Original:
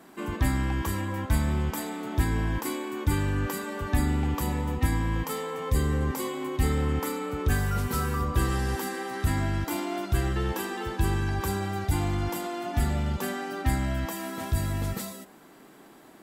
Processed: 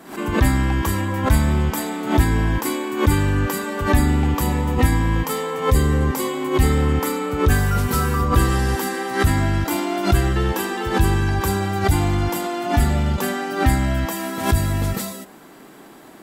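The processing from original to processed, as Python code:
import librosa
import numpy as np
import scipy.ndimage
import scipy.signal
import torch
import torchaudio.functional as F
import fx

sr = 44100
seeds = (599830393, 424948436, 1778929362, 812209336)

y = fx.pre_swell(x, sr, db_per_s=120.0)
y = y * 10.0 ** (8.0 / 20.0)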